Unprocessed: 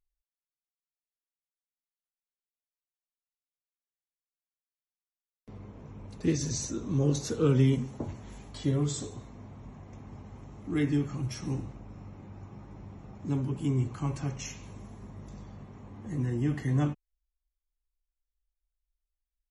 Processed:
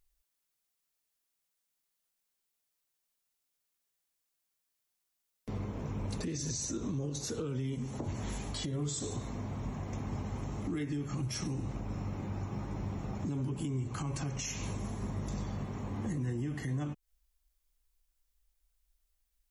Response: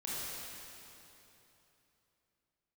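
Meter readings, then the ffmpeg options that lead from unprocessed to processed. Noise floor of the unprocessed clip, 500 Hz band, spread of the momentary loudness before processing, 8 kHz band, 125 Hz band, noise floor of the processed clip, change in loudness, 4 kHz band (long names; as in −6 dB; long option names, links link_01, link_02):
below −85 dBFS, −6.5 dB, 19 LU, 0.0 dB, −5.0 dB, −83 dBFS, −6.5 dB, 0.0 dB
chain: -af "acompressor=threshold=-36dB:ratio=10,highshelf=frequency=4700:gain=6,alimiter=level_in=12dB:limit=-24dB:level=0:latency=1:release=117,volume=-12dB,volume=8.5dB"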